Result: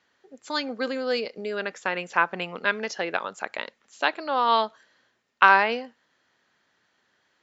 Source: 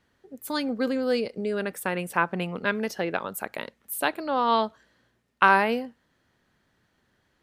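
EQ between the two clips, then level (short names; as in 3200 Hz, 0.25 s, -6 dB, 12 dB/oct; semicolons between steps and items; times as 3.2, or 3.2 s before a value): HPF 760 Hz 6 dB/oct; brick-wall FIR low-pass 7600 Hz; +4.0 dB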